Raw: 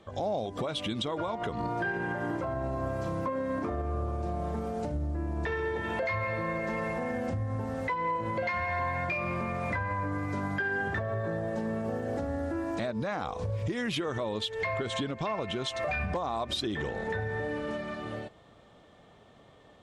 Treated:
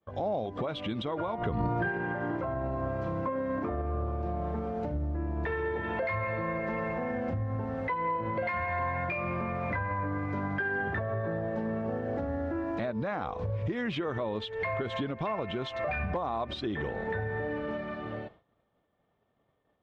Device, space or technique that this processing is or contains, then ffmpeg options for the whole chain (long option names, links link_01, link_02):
hearing-loss simulation: -filter_complex "[0:a]asettb=1/sr,asplit=3[link_01][link_02][link_03];[link_01]atrim=end=1.384[link_04];[link_02]atrim=start=1.38:end=1.88,asetpts=PTS-STARTPTS,afade=type=in:duration=0.004:curve=qsin,afade=type=out:start_time=0.496:duration=0.004:curve=qsin,lowshelf=frequency=170:gain=11[link_05];[link_03]atrim=start=1.876[link_06];[link_04][link_05]acrossfade=duration=0.004:curve1=hsin:curve2=qsin[link_07];[link_07][link_06]acrossfade=duration=0.004:curve1=qsin:curve2=hsin,lowpass=2600,agate=range=-33dB:threshold=-45dB:ratio=3:detection=peak"